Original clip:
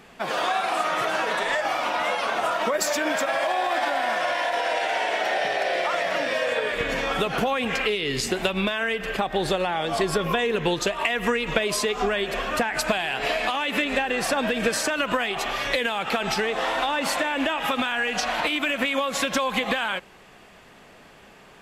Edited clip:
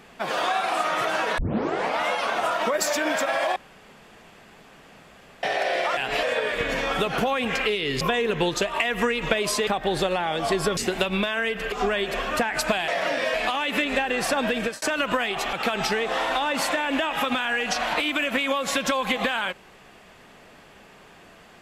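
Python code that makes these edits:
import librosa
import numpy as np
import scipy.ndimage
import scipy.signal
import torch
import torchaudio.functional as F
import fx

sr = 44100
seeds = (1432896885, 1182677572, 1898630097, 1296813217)

y = fx.edit(x, sr, fx.tape_start(start_s=1.38, length_s=0.62),
    fx.room_tone_fill(start_s=3.56, length_s=1.87),
    fx.swap(start_s=5.97, length_s=0.46, other_s=13.08, other_length_s=0.26),
    fx.swap(start_s=8.21, length_s=0.95, other_s=10.26, other_length_s=1.66),
    fx.fade_out_span(start_s=14.57, length_s=0.25),
    fx.cut(start_s=15.53, length_s=0.47), tone=tone)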